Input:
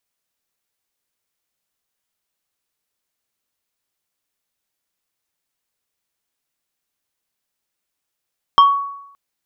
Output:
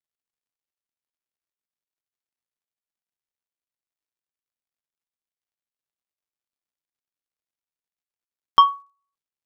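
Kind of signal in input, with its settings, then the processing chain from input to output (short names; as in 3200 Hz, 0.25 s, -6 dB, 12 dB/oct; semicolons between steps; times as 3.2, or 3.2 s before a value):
FM tone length 0.57 s, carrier 1120 Hz, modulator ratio 1.85, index 0.63, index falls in 0.32 s exponential, decay 0.80 s, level -4 dB
crackle 170/s -39 dBFS; upward expander 2.5:1, over -34 dBFS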